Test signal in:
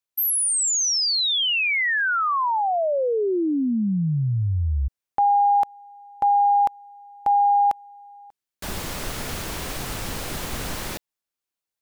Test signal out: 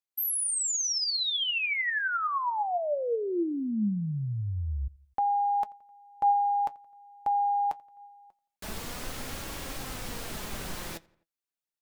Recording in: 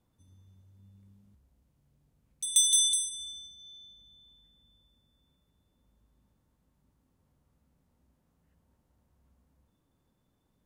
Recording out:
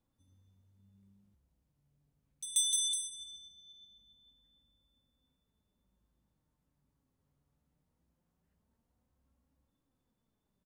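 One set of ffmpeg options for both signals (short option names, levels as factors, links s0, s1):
-filter_complex "[0:a]flanger=delay=3.6:depth=3.6:regen=64:speed=0.21:shape=sinusoidal,asplit=2[s0][s1];[s1]adelay=86,lowpass=f=3600:p=1,volume=0.0631,asplit=2[s2][s3];[s3]adelay=86,lowpass=f=3600:p=1,volume=0.54,asplit=2[s4][s5];[s5]adelay=86,lowpass=f=3600:p=1,volume=0.54[s6];[s0][s2][s4][s6]amix=inputs=4:normalize=0,volume=0.708"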